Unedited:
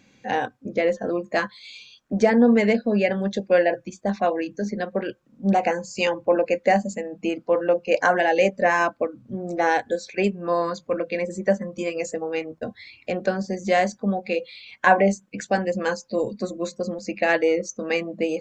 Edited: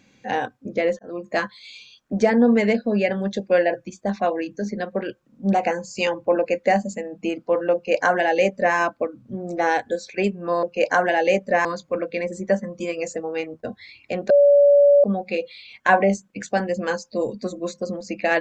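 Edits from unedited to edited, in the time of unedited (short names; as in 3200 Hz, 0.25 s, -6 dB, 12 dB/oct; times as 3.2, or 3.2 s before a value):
0.99–1.31 fade in
7.74–8.76 copy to 10.63
13.28–14.02 bleep 572 Hz -10 dBFS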